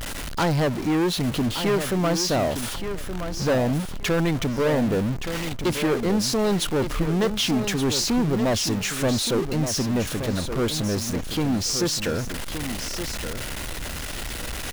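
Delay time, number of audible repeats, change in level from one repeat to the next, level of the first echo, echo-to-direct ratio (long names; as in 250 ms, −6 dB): 1,172 ms, 2, −13.5 dB, −9.0 dB, −9.0 dB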